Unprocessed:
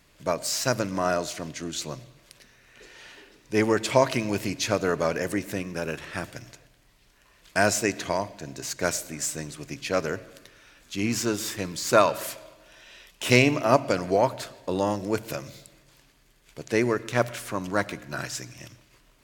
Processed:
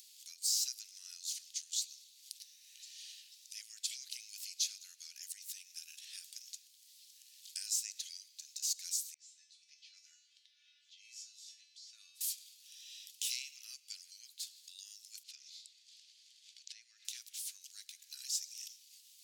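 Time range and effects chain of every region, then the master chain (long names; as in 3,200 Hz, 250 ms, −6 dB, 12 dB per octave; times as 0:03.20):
0:09.14–0:12.21: spectral tilt −2.5 dB per octave + low-pass that shuts in the quiet parts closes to 2,800 Hz, open at −15 dBFS + tuned comb filter 290 Hz, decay 0.39 s, mix 90%
0:15.23–0:17.05: low-pass filter 4,600 Hz + downward compressor 3 to 1, threshold −32 dBFS
whole clip: downward compressor 2 to 1, threshold −40 dBFS; inverse Chebyshev high-pass filter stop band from 870 Hz, stop band 70 dB; upward compression, threshold −58 dBFS; level +4.5 dB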